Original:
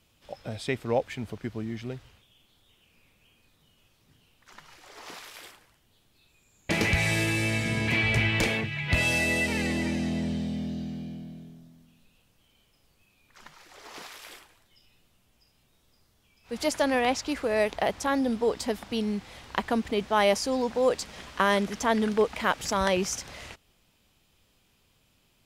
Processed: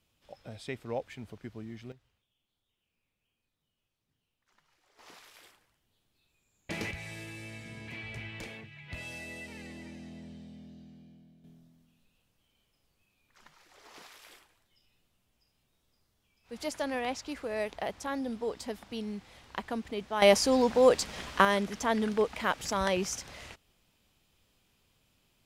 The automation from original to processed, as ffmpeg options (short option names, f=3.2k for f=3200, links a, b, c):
-af "asetnsamples=n=441:p=0,asendcmd='1.92 volume volume -20dB;4.99 volume volume -10.5dB;6.91 volume volume -17.5dB;11.44 volume volume -8.5dB;20.22 volume volume 2.5dB;21.45 volume volume -4dB',volume=-9dB"